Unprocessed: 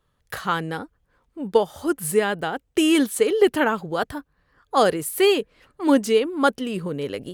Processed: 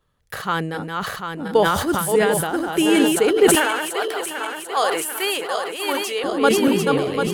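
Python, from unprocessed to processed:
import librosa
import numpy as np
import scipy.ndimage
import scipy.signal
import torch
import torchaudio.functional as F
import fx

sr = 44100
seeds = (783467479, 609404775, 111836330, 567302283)

y = fx.reverse_delay_fb(x, sr, ms=371, feedback_pct=71, wet_db=-4)
y = fx.highpass(y, sr, hz=720.0, slope=12, at=(3.55, 6.24))
y = fx.sustainer(y, sr, db_per_s=45.0)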